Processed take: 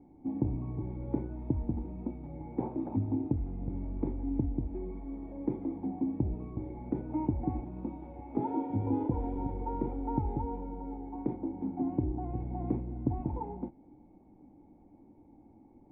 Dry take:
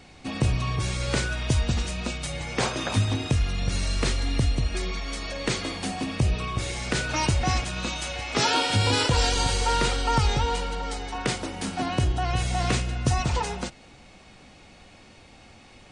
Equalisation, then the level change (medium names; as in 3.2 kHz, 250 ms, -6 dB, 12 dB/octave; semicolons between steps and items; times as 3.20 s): cascade formant filter u; +4.0 dB